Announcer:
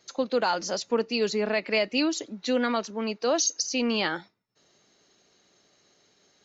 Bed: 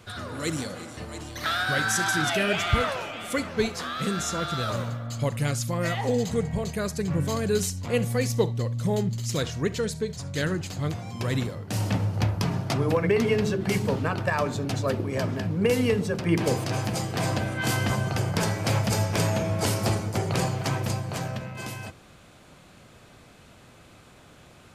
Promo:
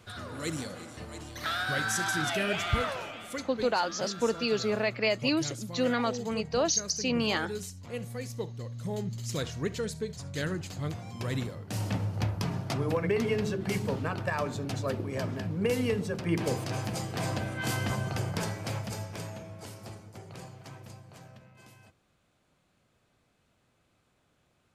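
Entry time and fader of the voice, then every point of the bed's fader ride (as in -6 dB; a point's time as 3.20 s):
3.30 s, -2.5 dB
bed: 3.09 s -5 dB
3.51 s -12.5 dB
8.51 s -12.5 dB
9.34 s -5.5 dB
18.25 s -5.5 dB
19.69 s -19.5 dB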